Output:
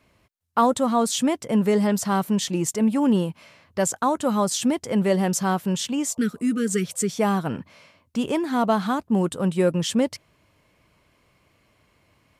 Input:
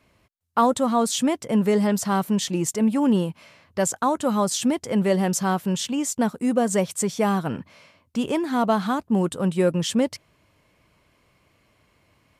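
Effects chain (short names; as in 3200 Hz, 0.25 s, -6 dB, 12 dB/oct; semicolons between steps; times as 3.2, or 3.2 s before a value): spectral repair 6.13–7.06, 490–1200 Hz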